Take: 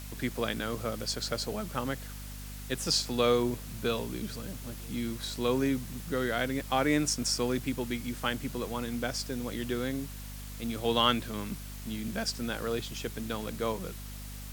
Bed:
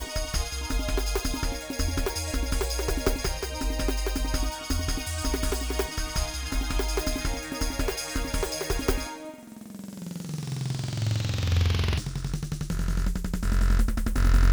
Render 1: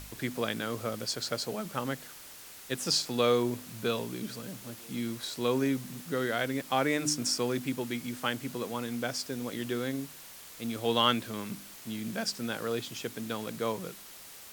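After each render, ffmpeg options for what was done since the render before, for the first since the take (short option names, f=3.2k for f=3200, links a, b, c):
-af "bandreject=f=50:t=h:w=4,bandreject=f=100:t=h:w=4,bandreject=f=150:t=h:w=4,bandreject=f=200:t=h:w=4,bandreject=f=250:t=h:w=4,bandreject=f=300:t=h:w=4"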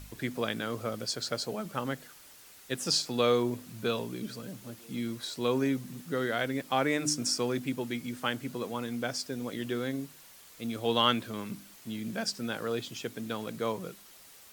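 -af "afftdn=nr=6:nf=-49"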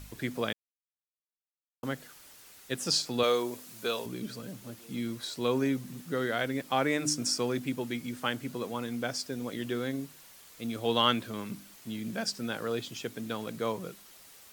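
-filter_complex "[0:a]asettb=1/sr,asplit=3[a][b][c];[a]atrim=end=3.234[d];[b]atrim=start=3.23:end=4.06,asetpts=PTS-STARTPTS,afade=t=in:d=0.004:c=qsin,afade=t=out:st=0.826:d=0.004:c=qsin,bass=f=250:g=-14,treble=f=4k:g=5[e];[c]atrim=start=4.056[f];[d][e]acrossfade=d=0.004:c1=hsin:c2=qsin[g];[g][f]acrossfade=d=0.004:c1=qsin:c2=hsin,asplit=3[h][i][j];[h]atrim=end=0.53,asetpts=PTS-STARTPTS,afade=t=out:st=0.526:d=0.004:c=hsin[k];[i]atrim=start=0.53:end=1.83,asetpts=PTS-STARTPTS,volume=0[l];[j]atrim=start=1.83,asetpts=PTS-STARTPTS,afade=t=in:d=0.004:c=hsin[m];[k][l][m]concat=n=3:v=0:a=1"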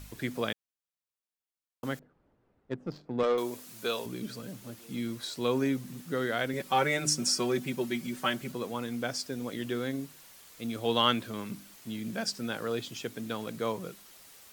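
-filter_complex "[0:a]asettb=1/sr,asplit=3[a][b][c];[a]atrim=end=1.994[d];[b]atrim=start=1.99:end=3.38,asetpts=PTS-STARTPTS,afade=t=in:d=0.004:c=qsin,afade=t=out:st=1.386:d=0.004:c=qsin,adynamicsmooth=sensitivity=1:basefreq=540[e];[c]atrim=start=3.376[f];[d][e]acrossfade=d=0.004:c1=hsin:c2=qsin[g];[g][f]acrossfade=d=0.004:c1=qsin:c2=hsin,asettb=1/sr,asplit=3[h][i][j];[h]atrim=end=6.534[k];[i]atrim=start=6.53:end=8.52,asetpts=PTS-STARTPTS,afade=t=in:d=0.004:c=qsin,afade=t=out:st=1.986:d=0.004:c=qsin,aecho=1:1:5.3:0.8,atrim=end_sample=87759[l];[j]atrim=start=8.516[m];[k][l]acrossfade=d=0.004:c1=hsin:c2=qsin[n];[n][m]acrossfade=d=0.004:c1=qsin:c2=hsin"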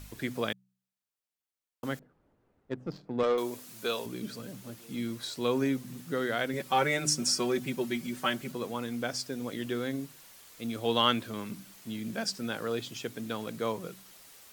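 -af "bandreject=f=63.19:t=h:w=4,bandreject=f=126.38:t=h:w=4,bandreject=f=189.57:t=h:w=4"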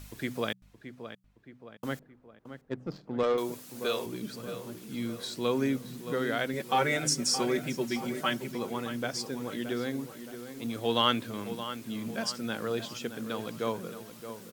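-filter_complex "[0:a]asplit=2[a][b];[b]adelay=621,lowpass=f=2.5k:p=1,volume=-10.5dB,asplit=2[c][d];[d]adelay=621,lowpass=f=2.5k:p=1,volume=0.52,asplit=2[e][f];[f]adelay=621,lowpass=f=2.5k:p=1,volume=0.52,asplit=2[g][h];[h]adelay=621,lowpass=f=2.5k:p=1,volume=0.52,asplit=2[i][j];[j]adelay=621,lowpass=f=2.5k:p=1,volume=0.52,asplit=2[k][l];[l]adelay=621,lowpass=f=2.5k:p=1,volume=0.52[m];[a][c][e][g][i][k][m]amix=inputs=7:normalize=0"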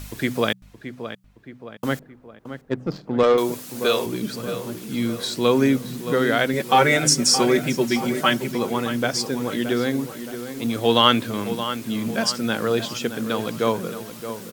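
-af "volume=10.5dB,alimiter=limit=-3dB:level=0:latency=1"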